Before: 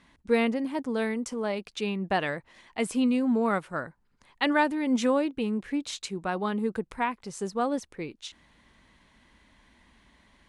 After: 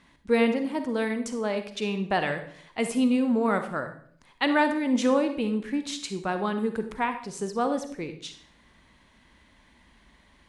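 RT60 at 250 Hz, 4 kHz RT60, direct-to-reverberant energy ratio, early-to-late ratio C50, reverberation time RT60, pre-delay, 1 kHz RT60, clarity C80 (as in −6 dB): 0.70 s, 0.50 s, 8.0 dB, 9.0 dB, 0.55 s, 38 ms, 0.50 s, 12.5 dB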